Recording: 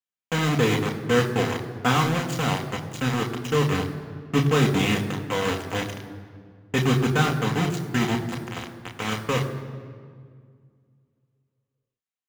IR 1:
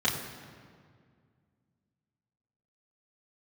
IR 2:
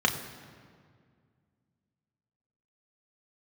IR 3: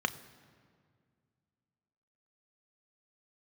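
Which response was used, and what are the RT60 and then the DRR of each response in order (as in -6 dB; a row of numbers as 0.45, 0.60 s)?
2; 2.0, 2.0, 2.0 s; -7.0, 2.0, 9.5 dB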